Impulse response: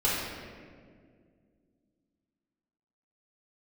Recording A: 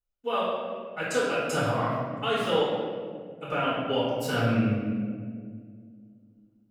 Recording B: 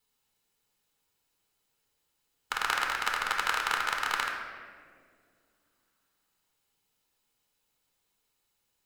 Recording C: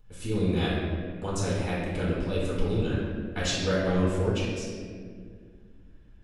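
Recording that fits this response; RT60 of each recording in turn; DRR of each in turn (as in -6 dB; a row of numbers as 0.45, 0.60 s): C; 2.0, 2.0, 2.0 s; -13.0, 0.0, -9.0 dB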